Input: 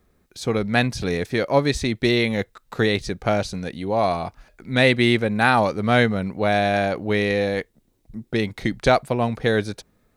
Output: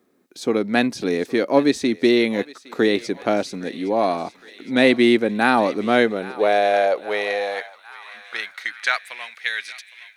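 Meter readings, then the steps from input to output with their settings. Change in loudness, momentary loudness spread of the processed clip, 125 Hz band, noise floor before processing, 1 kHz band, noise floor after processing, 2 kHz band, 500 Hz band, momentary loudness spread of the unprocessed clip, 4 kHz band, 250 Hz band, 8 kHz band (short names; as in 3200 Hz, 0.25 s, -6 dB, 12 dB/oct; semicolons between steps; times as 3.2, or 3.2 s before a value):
+1.0 dB, 14 LU, -12.5 dB, -65 dBFS, 0.0 dB, -51 dBFS, 0.0 dB, +1.5 dB, 11 LU, -0.5 dB, +2.0 dB, -1.0 dB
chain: thinning echo 0.813 s, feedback 74%, high-pass 780 Hz, level -17 dB; high-pass sweep 280 Hz -> 2100 Hz, 5.79–9.28; gain -1 dB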